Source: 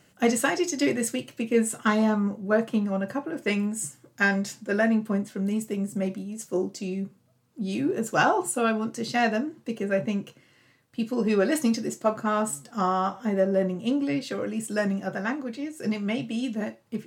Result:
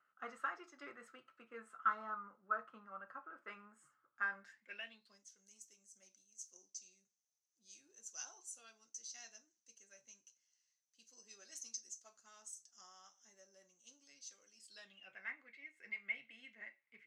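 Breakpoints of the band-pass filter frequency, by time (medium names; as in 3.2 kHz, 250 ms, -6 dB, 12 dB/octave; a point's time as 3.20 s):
band-pass filter, Q 13
4.37 s 1.3 kHz
5.26 s 6.1 kHz
14.48 s 6.1 kHz
15.23 s 2.1 kHz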